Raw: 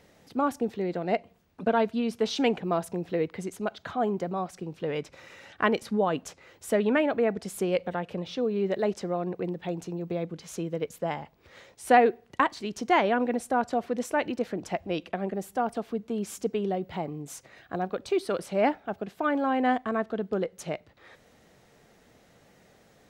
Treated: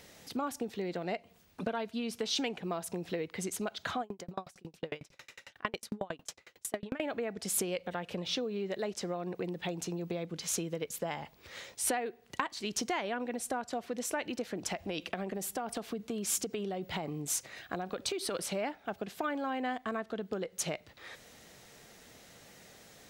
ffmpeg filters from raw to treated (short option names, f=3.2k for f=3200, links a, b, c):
-filter_complex "[0:a]asettb=1/sr,asplit=3[a][b][c];[a]atrim=end=4.014[d];[b]atrim=start=4.01:end=7,asetpts=PTS-STARTPTS,afade=t=in:d=0.004:c=qsin,afade=t=out:st=2.986:d=0.004:c=qsin,aeval=exprs='val(0)*pow(10,-38*if(lt(mod(11*n/s,1),2*abs(11)/1000),1-mod(11*n/s,1)/(2*abs(11)/1000),(mod(11*n/s,1)-2*abs(11)/1000)/(1-2*abs(11)/1000))/20)':c=same[e];[c]atrim=start=6.996[f];[d][e]acrossfade=d=0.004:c1=hsin:c2=qsin[g];[g][f]acrossfade=d=0.004:c1=qsin:c2=hsin,asettb=1/sr,asplit=3[h][i][j];[h]atrim=end=14.644[k];[i]atrim=start=14.64:end=18.35,asetpts=PTS-STARTPTS,afade=t=in:d=0.004:c=qsin,afade=t=out:st=3.706:d=0.004:c=qsin,acompressor=threshold=-29dB:ratio=6:attack=3.2:release=140:knee=1:detection=peak[l];[j]atrim=start=18.346[m];[k][l]acrossfade=d=0.004:c1=hsin:c2=qsin[n];[n][m]acrossfade=d=0.004:c1=qsin:c2=hsin,acompressor=threshold=-33dB:ratio=8,highshelf=f=2.2k:g=11"